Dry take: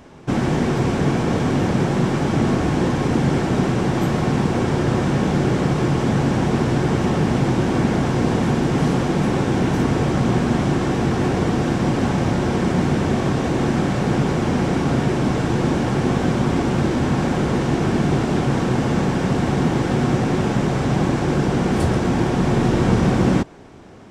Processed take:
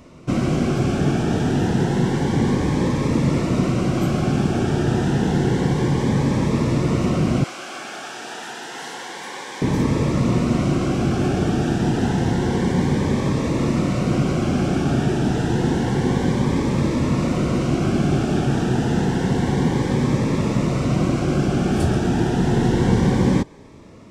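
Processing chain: 7.44–9.62 s: high-pass 980 Hz 12 dB/octave; Shepard-style phaser rising 0.29 Hz

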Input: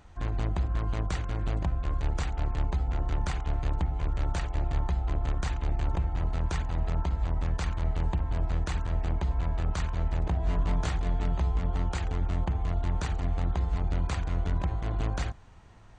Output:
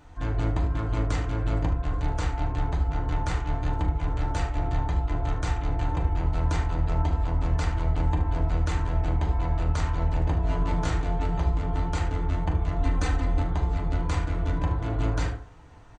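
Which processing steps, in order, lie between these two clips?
12.79–13.39 s: comb 3.9 ms, depth 84%; early reflections 40 ms -11 dB, 75 ms -14 dB; FDN reverb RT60 0.44 s, low-frequency decay 0.85×, high-frequency decay 0.4×, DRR -1 dB

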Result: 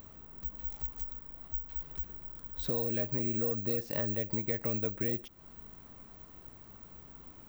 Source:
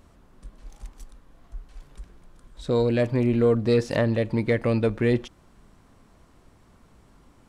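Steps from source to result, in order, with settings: compression 4:1, threshold -36 dBFS, peak gain reduction 16.5 dB; careless resampling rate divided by 2×, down none, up zero stuff

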